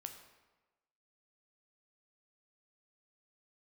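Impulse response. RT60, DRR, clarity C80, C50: 1.2 s, 5.0 dB, 9.5 dB, 8.0 dB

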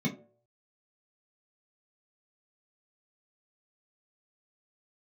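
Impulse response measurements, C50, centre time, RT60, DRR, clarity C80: 13.0 dB, 17 ms, 0.55 s, −3.5 dB, 16.0 dB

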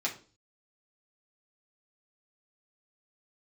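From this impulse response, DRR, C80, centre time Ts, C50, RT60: −3.5 dB, 17.5 dB, 15 ms, 12.0 dB, 0.40 s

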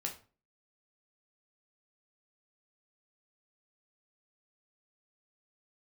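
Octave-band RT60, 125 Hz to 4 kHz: 0.50, 0.45, 0.40, 0.35, 0.35, 0.30 seconds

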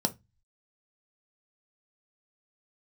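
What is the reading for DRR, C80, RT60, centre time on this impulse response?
6.5 dB, 32.0 dB, 0.20 s, 4 ms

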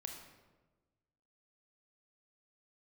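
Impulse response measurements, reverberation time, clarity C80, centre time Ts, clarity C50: 1.2 s, 7.0 dB, 37 ms, 5.0 dB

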